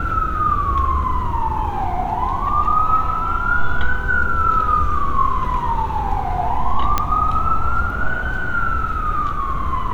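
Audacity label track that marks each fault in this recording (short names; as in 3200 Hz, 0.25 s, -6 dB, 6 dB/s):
6.980000	6.980000	pop -3 dBFS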